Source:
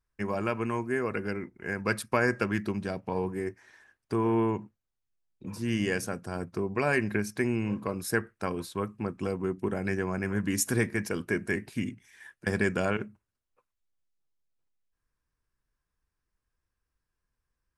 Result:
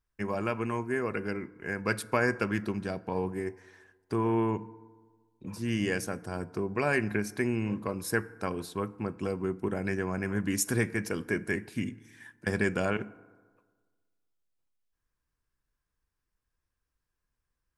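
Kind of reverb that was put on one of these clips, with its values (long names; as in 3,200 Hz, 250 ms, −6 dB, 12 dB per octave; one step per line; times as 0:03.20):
feedback delay network reverb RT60 1.5 s, high-frequency decay 0.4×, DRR 18 dB
level −1 dB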